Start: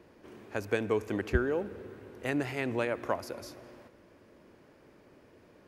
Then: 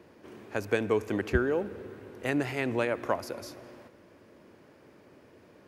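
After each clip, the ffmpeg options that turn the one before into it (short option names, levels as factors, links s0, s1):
-af "highpass=69,volume=1.33"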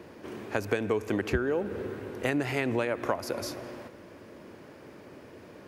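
-af "acompressor=threshold=0.0224:ratio=4,volume=2.37"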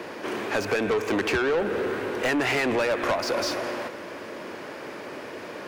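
-filter_complex "[0:a]acrossover=split=100|6900[s0][s1][s2];[s2]aeval=exprs='(mod(355*val(0)+1,2)-1)/355':c=same[s3];[s0][s1][s3]amix=inputs=3:normalize=0,asplit=2[s4][s5];[s5]highpass=f=720:p=1,volume=20,asoftclip=type=tanh:threshold=0.251[s6];[s4][s6]amix=inputs=2:normalize=0,lowpass=f=5600:p=1,volume=0.501,volume=0.668"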